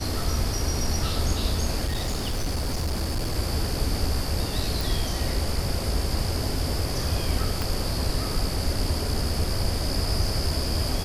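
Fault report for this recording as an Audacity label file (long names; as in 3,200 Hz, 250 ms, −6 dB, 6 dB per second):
1.850000	3.360000	clipping −22.5 dBFS
4.810000	4.810000	click
7.620000	7.620000	click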